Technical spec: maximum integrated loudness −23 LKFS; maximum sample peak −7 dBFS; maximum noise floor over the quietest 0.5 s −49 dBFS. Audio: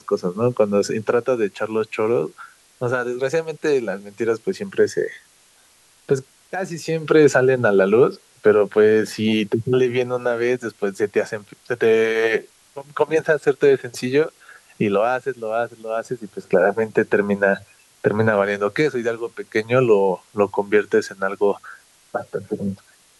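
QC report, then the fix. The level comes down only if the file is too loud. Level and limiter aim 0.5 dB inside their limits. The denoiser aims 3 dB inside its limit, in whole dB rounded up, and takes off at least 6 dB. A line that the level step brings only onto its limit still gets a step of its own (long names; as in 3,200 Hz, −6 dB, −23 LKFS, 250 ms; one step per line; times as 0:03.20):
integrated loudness −20.5 LKFS: out of spec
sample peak −3.0 dBFS: out of spec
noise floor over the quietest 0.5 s −55 dBFS: in spec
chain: level −3 dB
brickwall limiter −7.5 dBFS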